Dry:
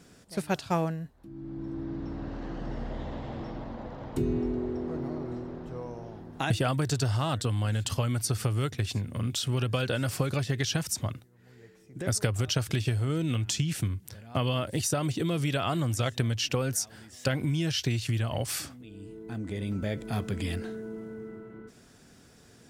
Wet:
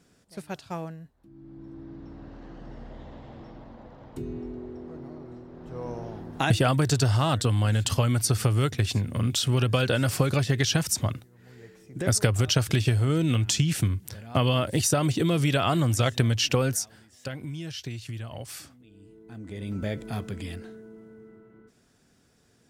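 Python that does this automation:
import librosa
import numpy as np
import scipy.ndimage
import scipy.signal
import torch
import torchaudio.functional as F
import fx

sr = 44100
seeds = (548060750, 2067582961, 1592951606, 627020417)

y = fx.gain(x, sr, db=fx.line((5.49, -7.0), (5.89, 5.0), (16.66, 5.0), (17.07, -7.5), (19.26, -7.5), (19.86, 1.5), (20.89, -8.0)))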